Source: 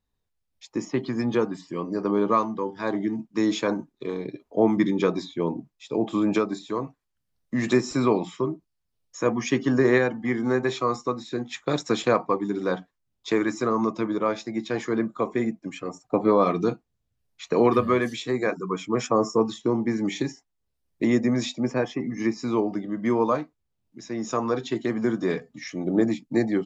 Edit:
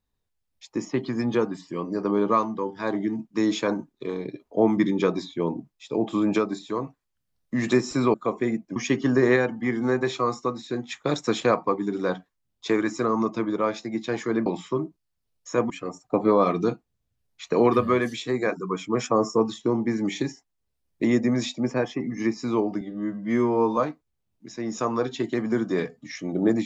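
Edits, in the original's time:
8.14–9.38 s: swap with 15.08–15.70 s
22.81–23.29 s: stretch 2×

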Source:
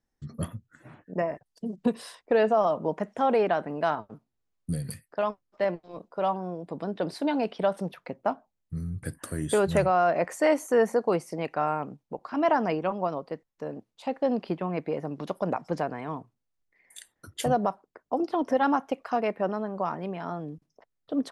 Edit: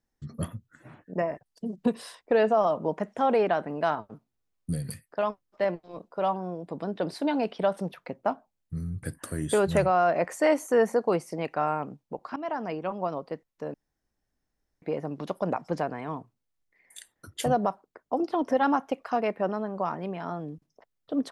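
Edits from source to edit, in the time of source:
12.36–13.24 s: fade in, from -13 dB
13.74–14.82 s: room tone

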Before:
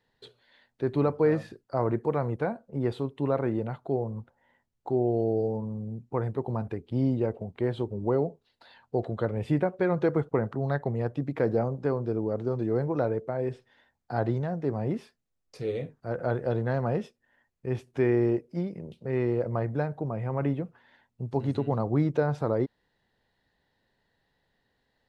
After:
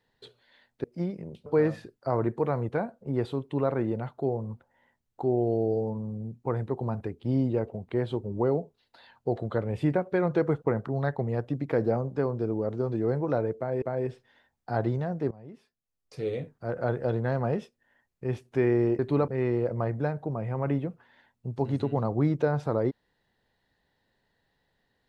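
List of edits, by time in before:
0.84–1.13 s: swap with 18.41–19.03 s
13.24–13.49 s: loop, 2 plays
14.73–15.64 s: fade in quadratic, from -18.5 dB

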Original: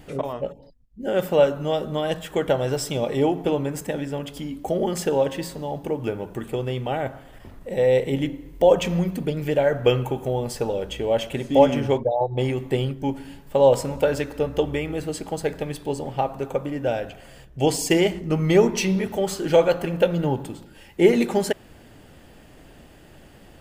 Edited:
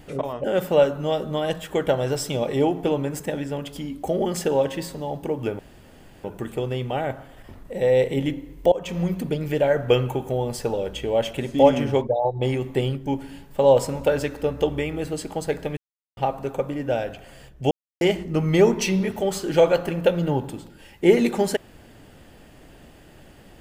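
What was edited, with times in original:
0.44–1.05 s: delete
6.20 s: insert room tone 0.65 s
8.68–9.06 s: fade in linear, from -21 dB
15.73–16.13 s: mute
17.67–17.97 s: mute

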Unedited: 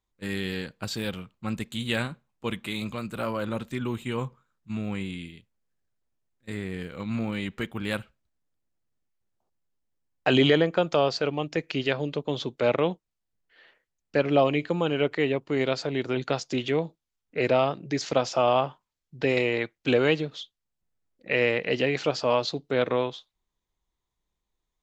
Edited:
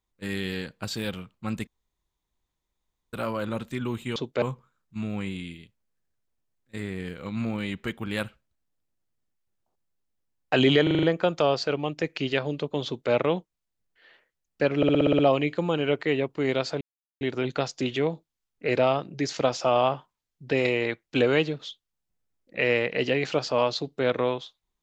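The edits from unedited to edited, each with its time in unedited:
1.67–3.13 s: room tone
10.57 s: stutter 0.04 s, 6 plays
12.40–12.66 s: copy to 4.16 s
14.31 s: stutter 0.06 s, 8 plays
15.93 s: insert silence 0.40 s

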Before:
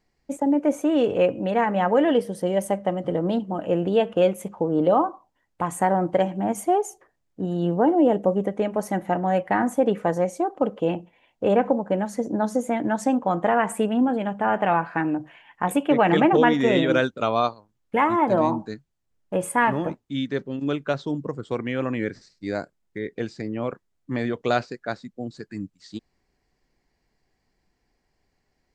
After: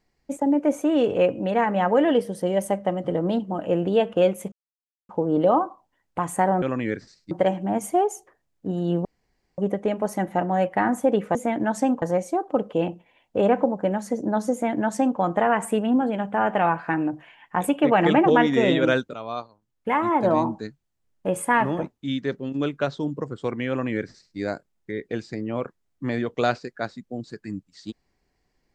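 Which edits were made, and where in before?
4.52 s: insert silence 0.57 s
7.79–8.32 s: room tone
12.59–13.26 s: copy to 10.09 s
17.21–18.35 s: fade in, from -14 dB
21.76–22.45 s: copy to 6.05 s

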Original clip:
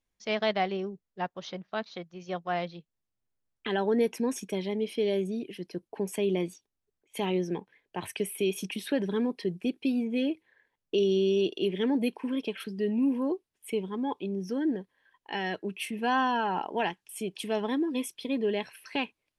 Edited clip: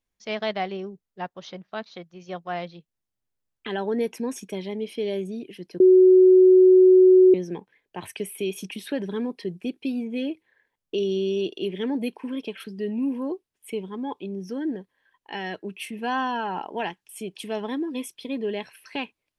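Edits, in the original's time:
5.80–7.34 s: bleep 371 Hz -10 dBFS

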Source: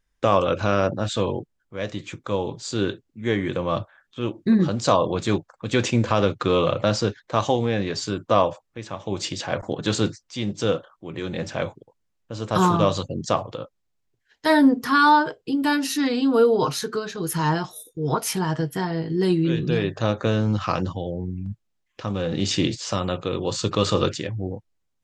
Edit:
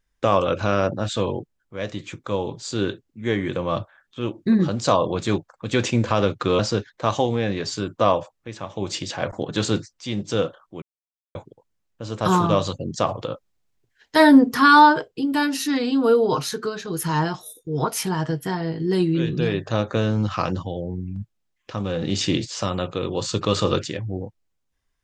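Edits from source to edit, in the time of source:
6.59–6.89 s: delete
11.12–11.65 s: mute
13.39–15.38 s: gain +4 dB

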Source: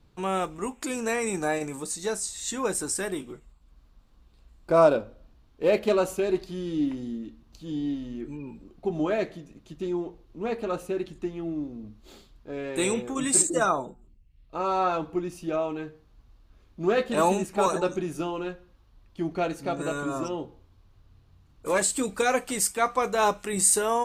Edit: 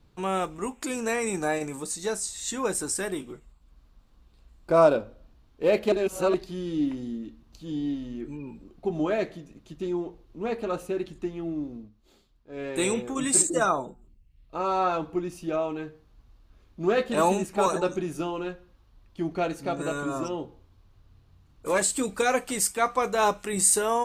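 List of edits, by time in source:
5.92–6.34 s: reverse
11.76–12.62 s: dip -11 dB, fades 0.14 s

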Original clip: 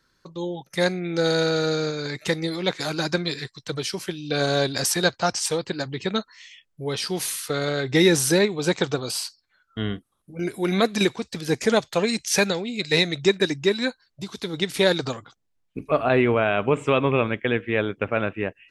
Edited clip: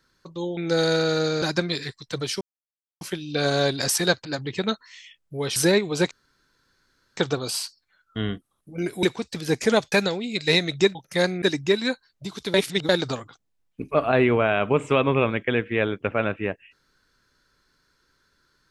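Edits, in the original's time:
0.57–1.04 s: move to 13.39 s
1.89–2.98 s: delete
3.97 s: insert silence 0.60 s
5.21–5.72 s: delete
7.03–8.23 s: delete
8.78 s: insert room tone 1.06 s
10.64–11.03 s: delete
11.92–12.36 s: delete
14.51–14.86 s: reverse

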